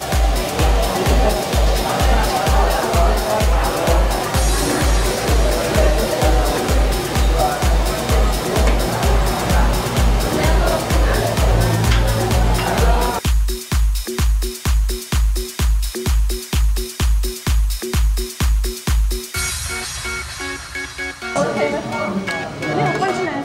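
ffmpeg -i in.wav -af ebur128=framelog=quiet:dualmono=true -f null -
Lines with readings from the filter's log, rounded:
Integrated loudness:
  I:         -15.4 LUFS
  Threshold: -25.4 LUFS
Loudness range:
  LRA:         4.8 LU
  Threshold: -35.3 LUFS
  LRA low:   -18.7 LUFS
  LRA high:  -13.9 LUFS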